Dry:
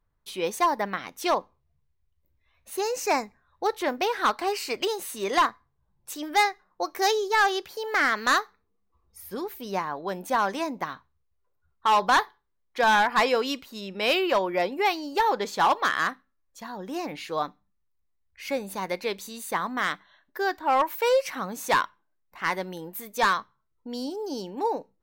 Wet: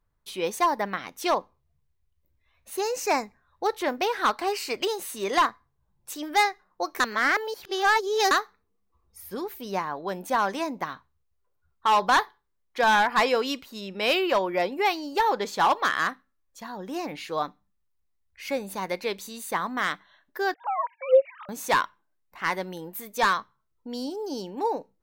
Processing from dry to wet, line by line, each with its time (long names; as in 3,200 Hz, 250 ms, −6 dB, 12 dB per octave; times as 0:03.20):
0:07.00–0:08.31: reverse
0:20.54–0:21.49: three sine waves on the formant tracks